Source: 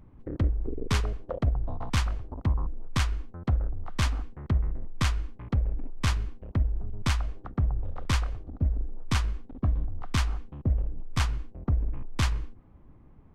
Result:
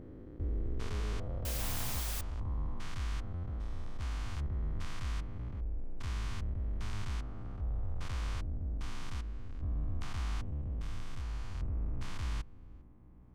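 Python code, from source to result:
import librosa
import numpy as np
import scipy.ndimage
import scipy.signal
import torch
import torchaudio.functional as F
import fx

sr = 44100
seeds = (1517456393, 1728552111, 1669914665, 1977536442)

y = fx.spec_steps(x, sr, hold_ms=400)
y = fx.add_hum(y, sr, base_hz=60, snr_db=25)
y = fx.quant_dither(y, sr, seeds[0], bits=6, dither='triangular', at=(1.45, 2.21))
y = y * 10.0 ** (-4.5 / 20.0)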